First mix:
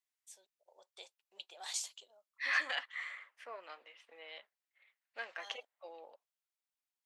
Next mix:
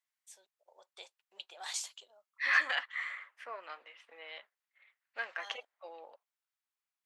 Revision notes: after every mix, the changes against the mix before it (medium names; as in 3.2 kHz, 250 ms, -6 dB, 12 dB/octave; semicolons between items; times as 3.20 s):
master: add peaking EQ 1.4 kHz +6 dB 1.7 oct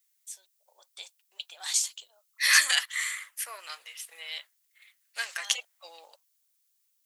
second voice: remove low-pass 2.5 kHz 12 dB/octave; master: add tilt EQ +4.5 dB/octave